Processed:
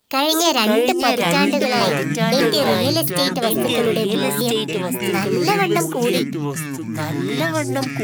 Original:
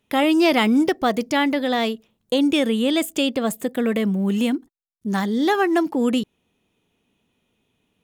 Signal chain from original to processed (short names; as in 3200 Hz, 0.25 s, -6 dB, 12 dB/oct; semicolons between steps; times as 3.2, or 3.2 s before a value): notches 50/100/150/200/250/300/350 Hz; echoes that change speed 0.499 s, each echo -4 st, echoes 3; high shelf 3800 Hz +9.5 dB; formant shift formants +5 st; bit-crush 11-bit